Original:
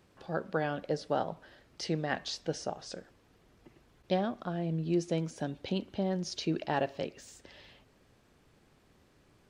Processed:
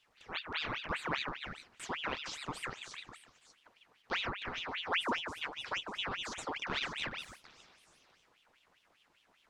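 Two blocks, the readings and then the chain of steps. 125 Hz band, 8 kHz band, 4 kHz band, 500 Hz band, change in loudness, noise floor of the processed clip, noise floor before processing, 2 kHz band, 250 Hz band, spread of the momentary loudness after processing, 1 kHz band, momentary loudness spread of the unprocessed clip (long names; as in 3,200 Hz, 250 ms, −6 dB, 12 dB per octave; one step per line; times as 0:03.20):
−14.0 dB, −3.5 dB, +4.5 dB, −11.5 dB, −3.5 dB, −71 dBFS, −66 dBFS, +5.0 dB, −13.0 dB, 12 LU, −2.0 dB, 13 LU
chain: flanger 0.47 Hz, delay 6.6 ms, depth 7.9 ms, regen +39%
echo through a band-pass that steps 148 ms, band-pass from 360 Hz, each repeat 1.4 octaves, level 0 dB
ring modulator whose carrier an LFO sweeps 1,900 Hz, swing 70%, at 5 Hz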